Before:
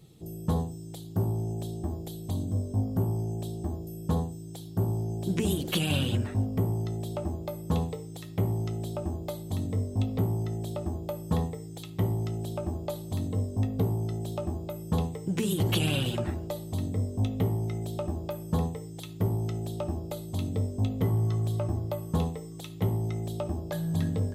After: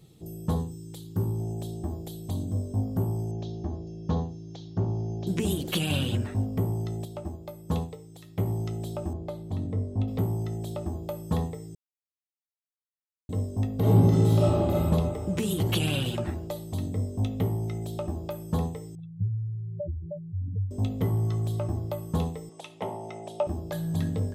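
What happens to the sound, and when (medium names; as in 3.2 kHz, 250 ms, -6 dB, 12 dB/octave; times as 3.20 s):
0.55–1.40 s: peaking EQ 680 Hz -14 dB 0.33 oct
3.31–5.27 s: steep low-pass 6.6 kHz 96 dB/octave
7.05–8.46 s: upward expansion, over -36 dBFS
9.13–10.08 s: low-pass 1.6 kHz 6 dB/octave
11.75–13.29 s: mute
13.79–14.80 s: reverb throw, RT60 2.4 s, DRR -10 dB
18.95–20.71 s: spectral contrast enhancement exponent 3.7
22.49–23.47 s: cabinet simulation 300–9500 Hz, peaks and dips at 310 Hz -6 dB, 620 Hz +9 dB, 910 Hz +9 dB, 2.6 kHz +4 dB, 4.2 kHz -6 dB, 7.2 kHz -5 dB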